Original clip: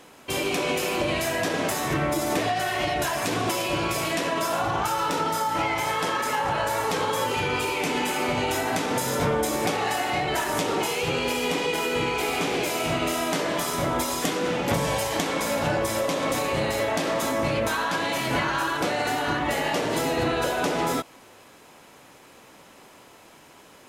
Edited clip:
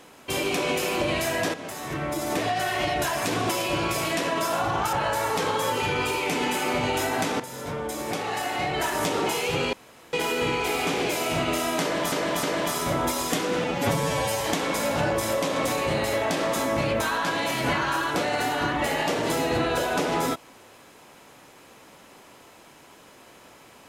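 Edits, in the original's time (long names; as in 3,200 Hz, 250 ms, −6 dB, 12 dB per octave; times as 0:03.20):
0:01.54–0:02.62: fade in, from −13 dB
0:04.93–0:06.47: remove
0:08.94–0:10.51: fade in, from −13 dB
0:11.27–0:11.67: fill with room tone
0:13.35–0:13.66: repeat, 3 plays
0:14.56–0:15.07: time-stretch 1.5×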